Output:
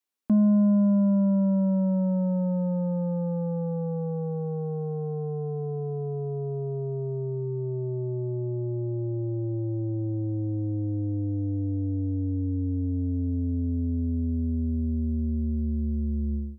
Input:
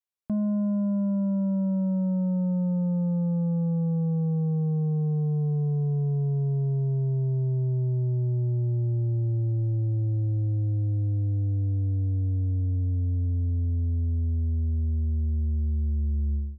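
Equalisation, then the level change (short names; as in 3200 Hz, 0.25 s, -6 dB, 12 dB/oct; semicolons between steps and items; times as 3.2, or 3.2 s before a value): resonant low shelf 190 Hz -7 dB, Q 3; notch 650 Hz, Q 17; +5.0 dB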